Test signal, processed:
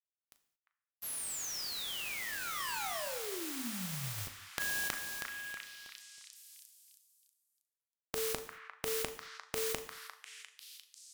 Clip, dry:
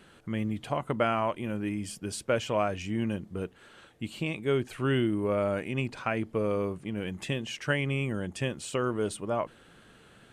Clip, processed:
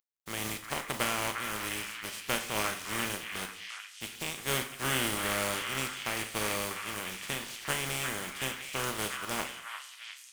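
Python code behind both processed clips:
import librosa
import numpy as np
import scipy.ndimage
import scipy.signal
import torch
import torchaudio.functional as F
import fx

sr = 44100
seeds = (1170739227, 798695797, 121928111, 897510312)

p1 = fx.spec_flatten(x, sr, power=0.29)
p2 = fx.doubler(p1, sr, ms=38.0, db=-11.0)
p3 = np.sign(p2) * np.maximum(np.abs(p2) - 10.0 ** (-46.0 / 20.0), 0.0)
p4 = p3 + fx.echo_stepped(p3, sr, ms=350, hz=1500.0, octaves=0.7, feedback_pct=70, wet_db=-2.5, dry=0)
p5 = fx.rev_gated(p4, sr, seeds[0], gate_ms=250, shape='falling', drr_db=8.5)
y = p5 * librosa.db_to_amplitude(-4.5)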